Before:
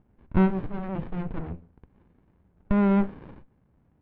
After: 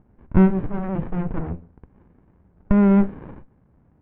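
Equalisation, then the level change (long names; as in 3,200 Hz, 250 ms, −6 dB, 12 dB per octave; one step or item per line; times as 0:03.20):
low-pass filter 2,000 Hz 12 dB per octave
dynamic equaliser 980 Hz, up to −5 dB, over −37 dBFS, Q 0.82
+6.5 dB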